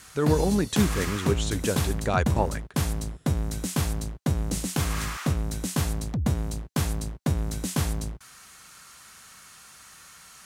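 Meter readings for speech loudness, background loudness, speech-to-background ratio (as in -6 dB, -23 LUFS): -27.5 LUFS, -29.0 LUFS, 1.5 dB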